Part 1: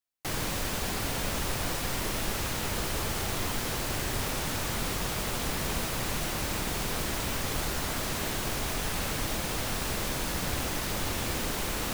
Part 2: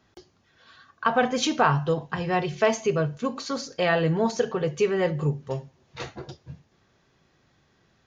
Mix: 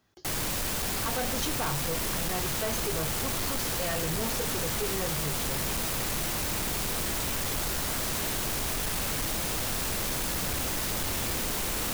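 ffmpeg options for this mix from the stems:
-filter_complex "[0:a]volume=1.19[s0];[1:a]volume=0.447[s1];[s0][s1]amix=inputs=2:normalize=0,asoftclip=type=tanh:threshold=0.0473,highshelf=f=6000:g=6.5"

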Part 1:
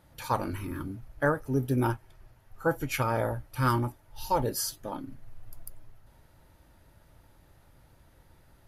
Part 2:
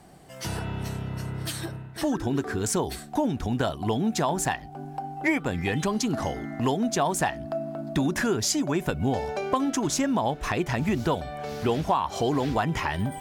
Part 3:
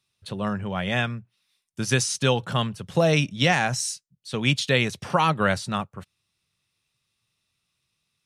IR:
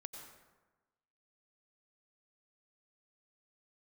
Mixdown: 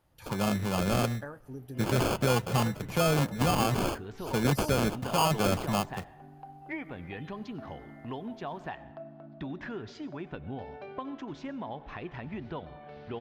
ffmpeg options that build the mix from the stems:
-filter_complex "[0:a]acompressor=threshold=0.0447:ratio=6,volume=0.251,asplit=2[s0][s1];[s1]volume=0.2[s2];[1:a]lowpass=f=3600:w=0.5412,lowpass=f=3600:w=1.3066,adelay=1450,volume=0.158,asplit=2[s3][s4];[s4]volume=0.668[s5];[2:a]acrusher=samples=23:mix=1:aa=0.000001,volume=0.891,asplit=2[s6][s7];[s7]volume=0.0794[s8];[3:a]atrim=start_sample=2205[s9];[s2][s5][s8]amix=inputs=3:normalize=0[s10];[s10][s9]afir=irnorm=-1:irlink=0[s11];[s0][s3][s6][s11]amix=inputs=4:normalize=0,alimiter=limit=0.133:level=0:latency=1:release=15"

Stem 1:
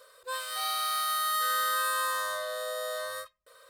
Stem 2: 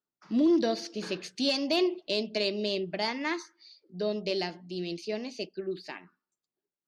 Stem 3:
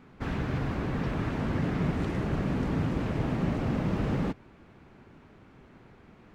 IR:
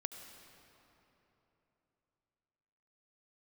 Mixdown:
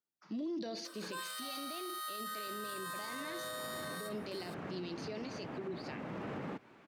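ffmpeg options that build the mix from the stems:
-filter_complex "[0:a]highpass=600,alimiter=level_in=1.58:limit=0.0631:level=0:latency=1,volume=0.631,adelay=850,volume=1.33,asplit=2[s0][s1];[s1]volume=0.224[s2];[1:a]alimiter=level_in=1.33:limit=0.0631:level=0:latency=1:release=12,volume=0.75,volume=0.531,asplit=2[s3][s4];[2:a]acrossover=split=2900[s5][s6];[s6]acompressor=threshold=0.00112:ratio=4:attack=1:release=60[s7];[s5][s7]amix=inputs=2:normalize=0,adelay=2250,volume=0.891[s8];[s4]apad=whole_len=379183[s9];[s8][s9]sidechaincompress=threshold=0.00501:ratio=6:attack=6.4:release=511[s10];[s0][s10]amix=inputs=2:normalize=0,highpass=f=420:p=1,acompressor=threshold=0.0141:ratio=6,volume=1[s11];[3:a]atrim=start_sample=2205[s12];[s2][s12]afir=irnorm=-1:irlink=0[s13];[s3][s11][s13]amix=inputs=3:normalize=0,highpass=86,alimiter=level_in=2.99:limit=0.0631:level=0:latency=1:release=13,volume=0.335"

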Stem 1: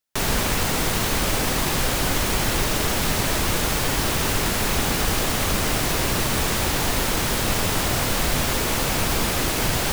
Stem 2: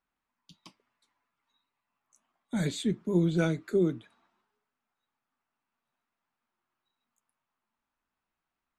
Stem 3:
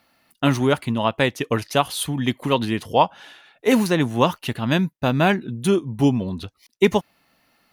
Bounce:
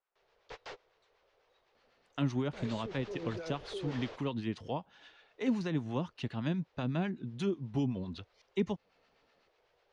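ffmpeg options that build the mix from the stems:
-filter_complex "[0:a]flanger=delay=6.9:depth=8.5:regen=-71:speed=0.27:shape=triangular,lowpass=4200,volume=0.224[s0];[1:a]volume=0.75,asplit=2[s1][s2];[2:a]adelay=1750,volume=0.335[s3];[s2]apad=whole_len=437699[s4];[s0][s4]sidechaingate=range=0.0355:threshold=0.00126:ratio=16:detection=peak[s5];[s5][s1]amix=inputs=2:normalize=0,lowshelf=f=330:t=q:w=3:g=-11.5,alimiter=level_in=2:limit=0.0631:level=0:latency=1:release=12,volume=0.501,volume=1[s6];[s3][s6]amix=inputs=2:normalize=0,lowpass=f=6200:w=0.5412,lowpass=f=6200:w=1.3066,acrossover=split=340[s7][s8];[s8]acompressor=threshold=0.0126:ratio=3[s9];[s7][s9]amix=inputs=2:normalize=0,acrossover=split=800[s10][s11];[s10]aeval=exprs='val(0)*(1-0.5/2+0.5/2*cos(2*PI*8*n/s))':c=same[s12];[s11]aeval=exprs='val(0)*(1-0.5/2-0.5/2*cos(2*PI*8*n/s))':c=same[s13];[s12][s13]amix=inputs=2:normalize=0"

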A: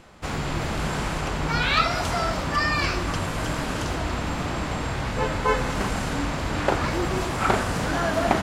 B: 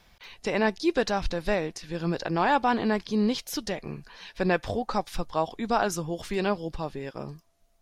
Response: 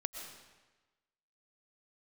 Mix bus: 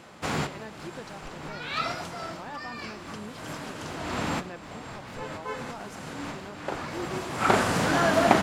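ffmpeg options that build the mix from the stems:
-filter_complex "[0:a]highpass=130,volume=1.26[s0];[1:a]aeval=exprs='val(0)*gte(abs(val(0)),0.00562)':c=same,volume=0.126,asplit=2[s1][s2];[s2]apad=whole_len=371439[s3];[s0][s3]sidechaincompress=threshold=0.00112:ratio=4:attack=24:release=390[s4];[s4][s1]amix=inputs=2:normalize=0"

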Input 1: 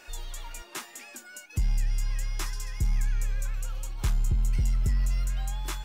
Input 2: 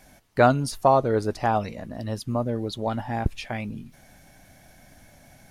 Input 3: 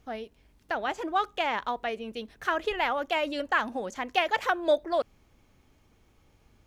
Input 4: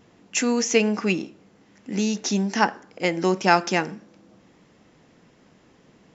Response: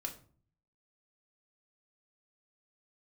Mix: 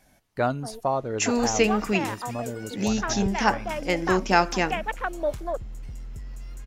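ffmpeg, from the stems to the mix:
-filter_complex "[0:a]acompressor=threshold=0.0141:ratio=6,adelay=1300,volume=1.12[s0];[1:a]volume=0.447[s1];[2:a]afwtdn=0.0282,adelay=550,volume=0.708[s2];[3:a]adelay=850,volume=0.794[s3];[s0][s1][s2][s3]amix=inputs=4:normalize=0"

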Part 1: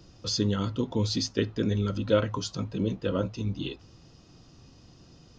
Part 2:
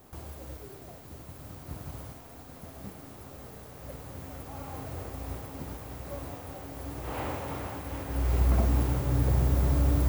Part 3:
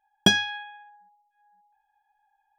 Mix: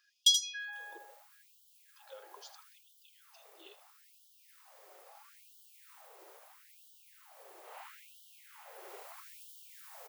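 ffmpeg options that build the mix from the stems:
-filter_complex "[0:a]acompressor=threshold=0.0316:ratio=6,volume=0.178,asplit=3[s0][s1][s2];[s0]atrim=end=0.98,asetpts=PTS-STARTPTS,afade=t=out:st=0.976:d=0.004:c=hsin[s3];[s1]atrim=start=0.98:end=1.96,asetpts=PTS-STARTPTS,volume=0[s4];[s2]atrim=start=1.96,asetpts=PTS-STARTPTS,afade=t=in:d=0.004:c=hsin[s5];[s3][s4][s5]concat=n=3:v=0:a=1,asplit=2[s6][s7];[s7]volume=0.2[s8];[1:a]adelay=600,volume=0.251,asplit=2[s9][s10];[s10]volume=0.668[s11];[2:a]acontrast=80,alimiter=limit=0.447:level=0:latency=1:release=413,volume=1,asplit=2[s12][s13];[s13]volume=0.668[s14];[s8][s11][s14]amix=inputs=3:normalize=0,aecho=0:1:79:1[s15];[s6][s9][s12][s15]amix=inputs=4:normalize=0,acrossover=split=150|3000[s16][s17][s18];[s17]acompressor=threshold=0.00794:ratio=6[s19];[s16][s19][s18]amix=inputs=3:normalize=0,asubboost=boost=7:cutoff=75,afftfilt=real='re*gte(b*sr/1024,330*pow(2900/330,0.5+0.5*sin(2*PI*0.76*pts/sr)))':imag='im*gte(b*sr/1024,330*pow(2900/330,0.5+0.5*sin(2*PI*0.76*pts/sr)))':win_size=1024:overlap=0.75"

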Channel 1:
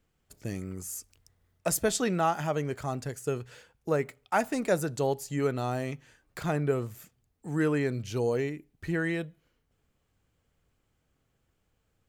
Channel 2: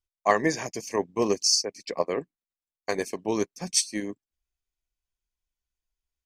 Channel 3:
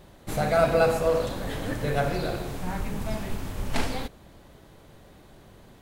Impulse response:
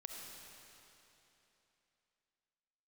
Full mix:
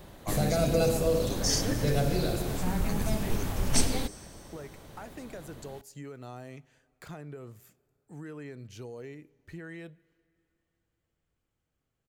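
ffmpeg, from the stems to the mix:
-filter_complex "[0:a]alimiter=limit=0.075:level=0:latency=1:release=206,acompressor=threshold=0.0282:ratio=3,adelay=650,volume=0.355,asplit=2[s0][s1];[s1]volume=0.106[s2];[1:a]aemphasis=mode=production:type=bsi,volume=0.168,asplit=2[s3][s4];[s4]volume=0.562[s5];[2:a]highshelf=f=12000:g=6,volume=1.26[s6];[3:a]atrim=start_sample=2205[s7];[s2][s5]amix=inputs=2:normalize=0[s8];[s8][s7]afir=irnorm=-1:irlink=0[s9];[s0][s3][s6][s9]amix=inputs=4:normalize=0,acrossover=split=480|3000[s10][s11][s12];[s11]acompressor=threshold=0.0126:ratio=6[s13];[s10][s13][s12]amix=inputs=3:normalize=0"

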